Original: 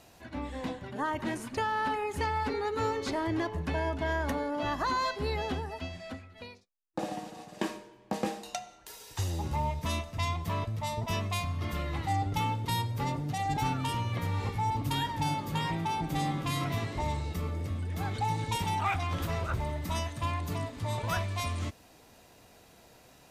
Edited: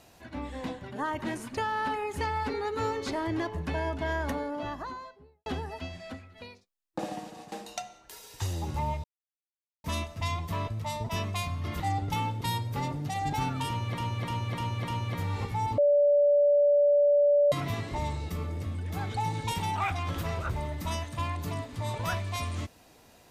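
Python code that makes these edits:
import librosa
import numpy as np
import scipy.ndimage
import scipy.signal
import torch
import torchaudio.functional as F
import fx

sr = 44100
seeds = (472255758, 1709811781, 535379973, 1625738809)

y = fx.studio_fade_out(x, sr, start_s=4.22, length_s=1.24)
y = fx.edit(y, sr, fx.cut(start_s=7.52, length_s=0.77),
    fx.insert_silence(at_s=9.81, length_s=0.8),
    fx.cut(start_s=11.77, length_s=0.27),
    fx.repeat(start_s=13.92, length_s=0.3, count=5),
    fx.bleep(start_s=14.82, length_s=1.74, hz=579.0, db=-18.5), tone=tone)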